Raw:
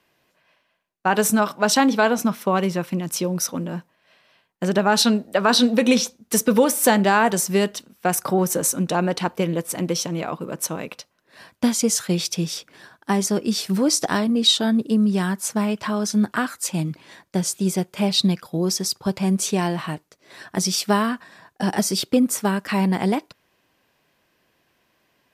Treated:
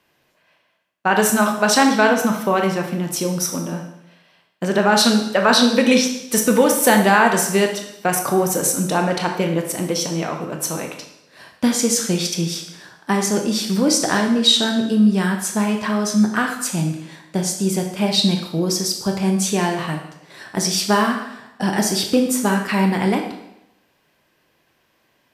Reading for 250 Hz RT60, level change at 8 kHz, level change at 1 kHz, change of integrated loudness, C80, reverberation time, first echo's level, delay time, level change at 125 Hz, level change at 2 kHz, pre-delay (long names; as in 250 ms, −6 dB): 0.80 s, +2.5 dB, +3.5 dB, +3.0 dB, 9.0 dB, 0.85 s, no echo audible, no echo audible, +2.0 dB, +5.0 dB, 19 ms